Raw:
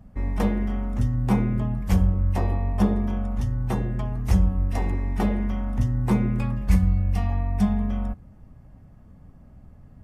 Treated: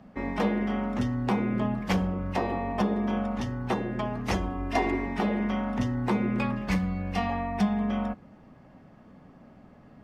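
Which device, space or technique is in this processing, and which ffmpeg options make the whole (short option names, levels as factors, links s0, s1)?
DJ mixer with the lows and highs turned down: -filter_complex "[0:a]acrossover=split=190 4600:gain=0.0794 1 0.0708[s0][s1][s2];[s0][s1][s2]amix=inputs=3:normalize=0,alimiter=limit=0.0794:level=0:latency=1:release=332,asettb=1/sr,asplit=3[s3][s4][s5];[s3]atrim=end=4.344[s6];[s4]atrim=start=4.34:end=5.06,asetpts=PTS-STARTPTS,afade=t=in:d=0.004:c=qsin,afade=t=out:st=0.716:d=0.004:c=qsin,aecho=1:1:2.9:0.66,atrim=end_sample=31752[s7];[s5]atrim=start=5.056[s8];[s6][s7]acrossfade=d=0.004:c1=hsin:c2=qsin[s9];[s9][s8]acrossfade=d=0.004:c1=qsin:c2=hsin,highshelf=f=4000:g=9,volume=2"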